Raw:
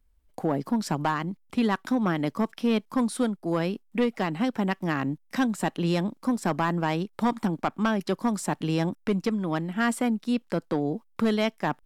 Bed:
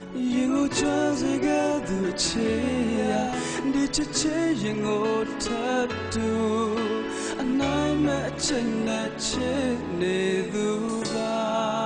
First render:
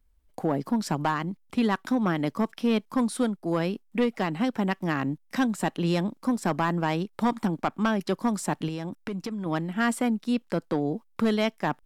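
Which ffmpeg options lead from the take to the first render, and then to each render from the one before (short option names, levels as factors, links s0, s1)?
-filter_complex "[0:a]asettb=1/sr,asplit=3[s0][s1][s2];[s0]atrim=end=8.684[s3];[s1]atrim=start=8.68:end=9.46,asetpts=PTS-STARTPTS,afade=t=in:d=0.004:c=qsin,afade=t=out:st=0.776:d=0.004:c=qsin,acompressor=threshold=0.0355:ratio=6:attack=3.2:release=140:knee=1:detection=peak[s4];[s2]atrim=start=9.456[s5];[s3][s4]acrossfade=d=0.004:c1=hsin:c2=qsin[s6];[s6][s5]acrossfade=d=0.004:c1=qsin:c2=hsin"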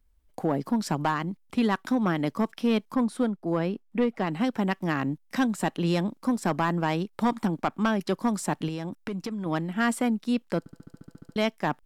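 -filter_complex "[0:a]asettb=1/sr,asplit=3[s0][s1][s2];[s0]atrim=end=2.954[s3];[s1]atrim=start=2.95:end=4.27,asetpts=PTS-STARTPTS,afade=t=in:d=0.004:c=qsin,afade=t=out:st=1.316:d=0.004:c=qsin,highshelf=f=2900:g=-10[s4];[s2]atrim=start=4.266[s5];[s3][s4]acrossfade=d=0.004:c1=hsin:c2=qsin[s6];[s6][s5]acrossfade=d=0.004:c1=qsin:c2=hsin,asplit=12[s7][s8][s9][s10][s11][s12][s13][s14][s15][s16][s17][s18];[s7]atrim=end=10.662[s19];[s8]atrim=start=10.588:end=10.662[s20];[s9]atrim=start=10.588:end=10.662[s21];[s10]atrim=start=10.588:end=10.662[s22];[s11]atrim=start=10.588:end=10.662[s23];[s12]atrim=start=10.588:end=10.662[s24];[s13]atrim=start=10.588:end=10.662[s25];[s14]atrim=start=10.588:end=10.662[s26];[s15]atrim=start=10.588:end=10.662[s27];[s16]atrim=start=10.588:end=10.662[s28];[s17]atrim=start=10.588:end=10.662[s29];[s18]atrim=start=11.358[s30];[s19][s20]acrossfade=d=0.004:c1=hsin:c2=hsin[s31];[s31][s21]acrossfade=d=0.004:c1=hsin:c2=hsin[s32];[s32][s22]acrossfade=d=0.004:c1=hsin:c2=hsin[s33];[s33][s23]acrossfade=d=0.004:c1=hsin:c2=hsin[s34];[s34][s24]acrossfade=d=0.004:c1=hsin:c2=hsin[s35];[s35][s25]acrossfade=d=0.004:c1=hsin:c2=hsin[s36];[s36][s26]acrossfade=d=0.004:c1=hsin:c2=hsin[s37];[s37][s27]acrossfade=d=0.004:c1=hsin:c2=hsin[s38];[s38][s28]acrossfade=d=0.004:c1=hsin:c2=hsin[s39];[s39][s29]acrossfade=d=0.004:c1=hsin:c2=hsin[s40];[s40][s30]acrossfade=d=0.004:c1=hsin:c2=hsin"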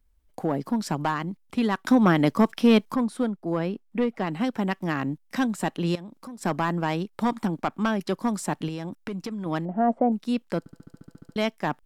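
-filter_complex "[0:a]asettb=1/sr,asplit=3[s0][s1][s2];[s0]atrim=end=5.954[s3];[s1]atrim=start=5.95:end=6.41,asetpts=PTS-STARTPTS,afade=t=in:d=0.004:c=qsin,afade=t=out:st=0.456:d=0.004:c=qsin,acompressor=threshold=0.0112:ratio=4:attack=3.2:release=140:knee=1:detection=peak[s4];[s2]atrim=start=6.406[s5];[s3][s4]acrossfade=d=0.004:c1=hsin:c2=qsin[s6];[s6][s5]acrossfade=d=0.004:c1=qsin:c2=hsin,asettb=1/sr,asplit=3[s7][s8][s9];[s7]atrim=end=9.654[s10];[s8]atrim=start=9.65:end=10.12,asetpts=PTS-STARTPTS,afade=t=in:d=0.004:c=qsin,afade=t=out:st=0.466:d=0.004:c=qsin,lowpass=f=660:t=q:w=4[s11];[s9]atrim=start=10.116[s12];[s10][s11]acrossfade=d=0.004:c1=hsin:c2=qsin[s13];[s13][s12]acrossfade=d=0.004:c1=qsin:c2=hsin,asplit=3[s14][s15][s16];[s14]atrim=end=1.872[s17];[s15]atrim=start=1.868:end=2.962,asetpts=PTS-STARTPTS,volume=2.11[s18];[s16]atrim=start=2.958[s19];[s17][s18]acrossfade=d=0.004:c1=hsin:c2=hsin[s20];[s20][s19]acrossfade=d=0.004:c1=hsin:c2=hsin"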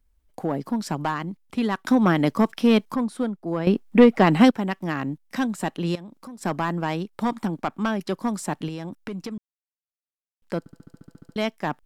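-filter_complex "[0:a]asplit=5[s0][s1][s2][s3][s4];[s0]atrim=end=3.672[s5];[s1]atrim=start=3.668:end=4.512,asetpts=PTS-STARTPTS,volume=3.76[s6];[s2]atrim=start=4.508:end=9.38,asetpts=PTS-STARTPTS,afade=t=out:st=4.868:d=0.004:c=hsin[s7];[s3]atrim=start=9.38:end=10.42,asetpts=PTS-STARTPTS,volume=0[s8];[s4]atrim=start=10.42,asetpts=PTS-STARTPTS,afade=t=in:d=0.004:c=hsin[s9];[s5][s6]acrossfade=d=0.004:c1=hsin:c2=hsin[s10];[s7][s8][s9]concat=n=3:v=0:a=1[s11];[s10][s11]acrossfade=d=0.004:c1=hsin:c2=hsin"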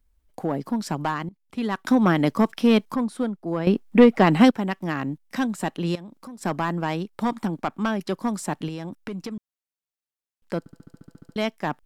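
-filter_complex "[0:a]asplit=2[s0][s1];[s0]atrim=end=1.29,asetpts=PTS-STARTPTS,afade=t=out:st=1.286:d=0.004:c=hsin:silence=0.11885[s2];[s1]atrim=start=1.29,asetpts=PTS-STARTPTS,afade=t=in:d=0.5:silence=0.11885[s3];[s2][s3]concat=n=2:v=0:a=1"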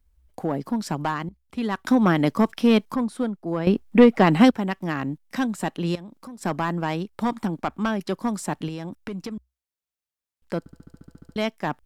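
-af "equalizer=f=63:t=o:w=0.41:g=13.5"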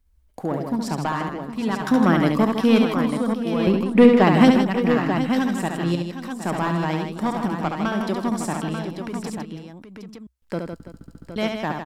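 -af "aecho=1:1:70|157|332|765|890:0.562|0.422|0.15|0.266|0.422"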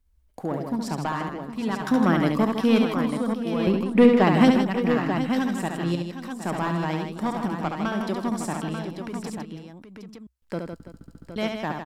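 -af "volume=0.708"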